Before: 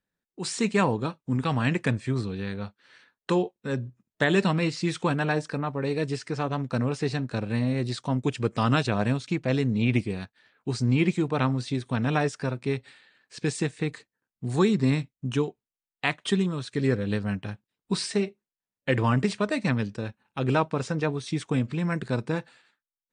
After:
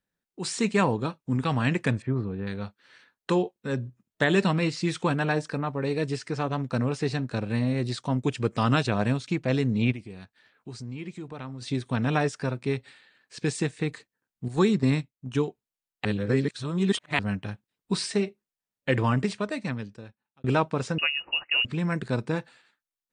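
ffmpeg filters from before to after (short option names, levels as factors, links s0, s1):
-filter_complex "[0:a]asettb=1/sr,asplit=3[s0][s1][s2];[s0]atrim=end=2.024[s3];[s1]atrim=start=2.02:end=2.47,asetpts=PTS-STARTPTS,afade=t=in:d=0.004:c=qsin,afade=t=out:st=0.446:d=0.004:c=qsin,lowpass=1400[s4];[s2]atrim=start=2.466[s5];[s3][s4]acrossfade=d=0.004:c1=hsin:c2=qsin[s6];[s6][s5]acrossfade=d=0.004:c1=qsin:c2=hsin,asplit=3[s7][s8][s9];[s7]afade=t=out:st=9.91:d=0.02[s10];[s8]acompressor=threshold=0.00562:ratio=2:attack=3.2:release=140:knee=1:detection=peak,afade=t=in:st=9.91:d=0.02,afade=t=out:st=11.61:d=0.02[s11];[s9]afade=t=in:st=11.61:d=0.02[s12];[s10][s11][s12]amix=inputs=3:normalize=0,asettb=1/sr,asplit=3[s13][s14][s15];[s13]atrim=end=14.484[s16];[s14]atrim=start=14.48:end=15.35,asetpts=PTS-STARTPTS,afade=t=in:d=0.004:c=qsin,afade=t=out:st=0.866:d=0.004:c=qsin,agate=range=0.398:threshold=0.0398:ratio=16:release=100:detection=peak[s17];[s15]atrim=start=15.346[s18];[s16][s17]acrossfade=d=0.004:c1=hsin:c2=qsin[s19];[s19][s18]acrossfade=d=0.004:c1=qsin:c2=hsin,asettb=1/sr,asplit=3[s20][s21][s22];[s20]atrim=end=20.984[s23];[s21]atrim=start=20.98:end=21.65,asetpts=PTS-STARTPTS,afade=t=in:d=0.004:c=qsin,afade=t=out:st=0.666:d=0.004:c=qsin,lowpass=f=2600:t=q:w=0.5098,lowpass=f=2600:t=q:w=0.6013,lowpass=f=2600:t=q:w=0.9,lowpass=f=2600:t=q:w=2.563,afreqshift=-3000[s24];[s22]atrim=start=21.646[s25];[s23][s24]acrossfade=d=0.004:c1=hsin:c2=qsin[s26];[s26][s25]acrossfade=d=0.004:c1=qsin:c2=hsin,asplit=4[s27][s28][s29][s30];[s27]atrim=end=16.052[s31];[s28]atrim=start=16.048:end=17.192,asetpts=PTS-STARTPTS,areverse[s32];[s29]atrim=start=17.188:end=20.44,asetpts=PTS-STARTPTS,afade=t=out:st=1.762:d=1.49[s33];[s30]atrim=start=20.44,asetpts=PTS-STARTPTS,afade=t=in:d=0.004:c=hsin[s34];[s31][s32]acrossfade=d=0.004:c1=hsin:c2=hsin[s35];[s33][s34]concat=n=2:v=0:a=1[s36];[s35][s36]acrossfade=d=0.004:c1=hsin:c2=hsin"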